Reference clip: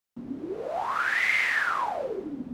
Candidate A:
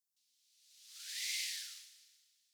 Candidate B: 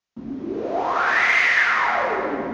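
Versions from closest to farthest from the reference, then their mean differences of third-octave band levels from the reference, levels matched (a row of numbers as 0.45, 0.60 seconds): B, A; 5.5, 20.0 decibels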